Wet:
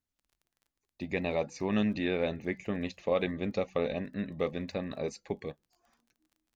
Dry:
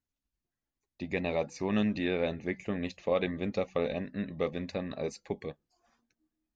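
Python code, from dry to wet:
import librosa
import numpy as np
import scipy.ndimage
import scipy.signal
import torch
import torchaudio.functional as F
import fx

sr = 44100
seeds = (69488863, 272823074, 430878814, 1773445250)

y = fx.dmg_crackle(x, sr, seeds[0], per_s=26.0, level_db=-53.0)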